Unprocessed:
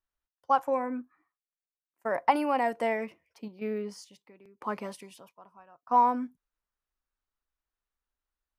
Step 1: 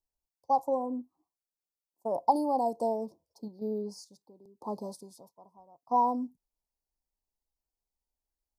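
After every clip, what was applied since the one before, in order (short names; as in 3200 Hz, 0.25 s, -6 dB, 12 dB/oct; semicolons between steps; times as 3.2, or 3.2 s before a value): elliptic band-stop 900–4500 Hz, stop band 40 dB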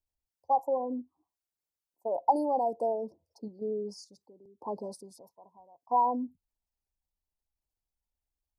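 formant sharpening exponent 1.5; bell 87 Hz +8.5 dB 0.39 oct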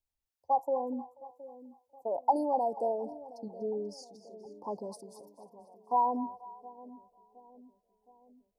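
split-band echo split 630 Hz, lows 0.717 s, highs 0.243 s, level -15 dB; gain -1.5 dB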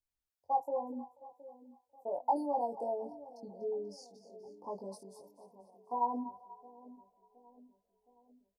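doubler 21 ms -2.5 dB; gain -6 dB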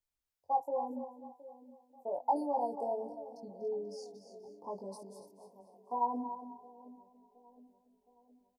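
echo 0.283 s -11 dB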